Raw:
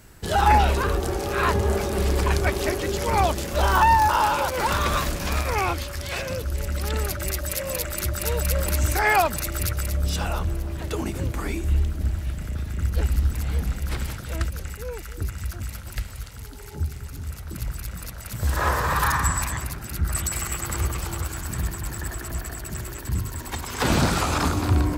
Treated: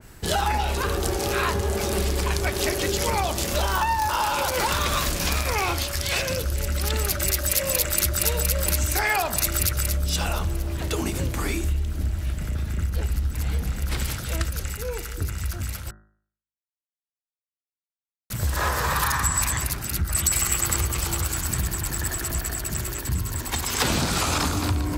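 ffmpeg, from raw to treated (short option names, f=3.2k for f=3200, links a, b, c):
-filter_complex "[0:a]asettb=1/sr,asplit=3[a][b][c];[a]atrim=end=5.594[d];[b]atrim=start=5.59:end=7.94,asetpts=PTS-STARTPTS,afade=t=in:d=0.004:c=qsin,afade=t=out:st=2.346:d=0.004:c=qsin,volume=19.5dB,asoftclip=hard,volume=-19.5dB[e];[c]atrim=start=7.936[f];[d][e]acrossfade=d=0.004:c1=hsin:c2=qsin[g];[g][f]acrossfade=d=0.004:c1=qsin:c2=hsin,asplit=3[h][i][j];[h]atrim=end=15.91,asetpts=PTS-STARTPTS,afade=t=out:st=15.906:d=0.004:c=hsin[k];[i]atrim=start=15.91:end=18.3,asetpts=PTS-STARTPTS,volume=0[l];[j]atrim=start=18.3,asetpts=PTS-STARTPTS,afade=t=in:d=0.004:c=hsin[m];[k][l][m]concat=n=3:v=0:a=1,bandreject=f=52.83:t=h:w=4,bandreject=f=105.66:t=h:w=4,bandreject=f=158.49:t=h:w=4,bandreject=f=211.32:t=h:w=4,bandreject=f=264.15:t=h:w=4,bandreject=f=316.98:t=h:w=4,bandreject=f=369.81:t=h:w=4,bandreject=f=422.64:t=h:w=4,bandreject=f=475.47:t=h:w=4,bandreject=f=528.3:t=h:w=4,bandreject=f=581.13:t=h:w=4,bandreject=f=633.96:t=h:w=4,bandreject=f=686.79:t=h:w=4,bandreject=f=739.62:t=h:w=4,bandreject=f=792.45:t=h:w=4,bandreject=f=845.28:t=h:w=4,bandreject=f=898.11:t=h:w=4,bandreject=f=950.94:t=h:w=4,bandreject=f=1.00377k:t=h:w=4,bandreject=f=1.0566k:t=h:w=4,bandreject=f=1.10943k:t=h:w=4,bandreject=f=1.16226k:t=h:w=4,bandreject=f=1.21509k:t=h:w=4,bandreject=f=1.26792k:t=h:w=4,bandreject=f=1.32075k:t=h:w=4,bandreject=f=1.37358k:t=h:w=4,bandreject=f=1.42641k:t=h:w=4,bandreject=f=1.47924k:t=h:w=4,bandreject=f=1.53207k:t=h:w=4,bandreject=f=1.5849k:t=h:w=4,bandreject=f=1.63773k:t=h:w=4,bandreject=f=1.69056k:t=h:w=4,bandreject=f=1.74339k:t=h:w=4,bandreject=f=1.79622k:t=h:w=4,bandreject=f=1.84905k:t=h:w=4,bandreject=f=1.90188k:t=h:w=4,acompressor=threshold=-24dB:ratio=6,adynamicequalizer=threshold=0.00631:dfrequency=2400:dqfactor=0.7:tfrequency=2400:tqfactor=0.7:attack=5:release=100:ratio=0.375:range=3:mode=boostabove:tftype=highshelf,volume=3dB"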